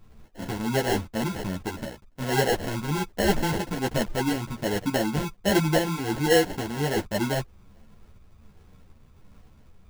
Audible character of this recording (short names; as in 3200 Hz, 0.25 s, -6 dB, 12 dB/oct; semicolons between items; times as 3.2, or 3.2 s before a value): phasing stages 2, 1.3 Hz, lowest notch 620–4100 Hz; aliases and images of a low sample rate 1200 Hz, jitter 0%; a shimmering, thickened sound